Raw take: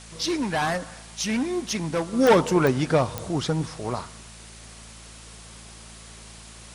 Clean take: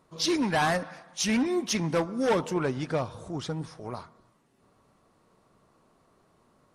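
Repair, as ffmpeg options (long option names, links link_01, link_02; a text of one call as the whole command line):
ffmpeg -i in.wav -af "adeclick=threshold=4,bandreject=frequency=55.6:width_type=h:width=4,bandreject=frequency=111.2:width_type=h:width=4,bandreject=frequency=166.8:width_type=h:width=4,bandreject=frequency=222.4:width_type=h:width=4,afwtdn=0.0063,asetnsamples=nb_out_samples=441:pad=0,asendcmd='2.13 volume volume -8dB',volume=0dB" out.wav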